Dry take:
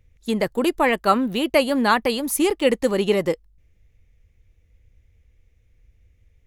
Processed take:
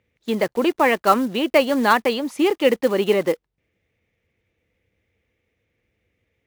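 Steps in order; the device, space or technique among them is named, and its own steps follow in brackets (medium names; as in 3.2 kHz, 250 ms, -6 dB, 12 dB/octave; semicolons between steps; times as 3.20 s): early digital voice recorder (band-pass 220–3600 Hz; block-companded coder 5-bit); trim +2 dB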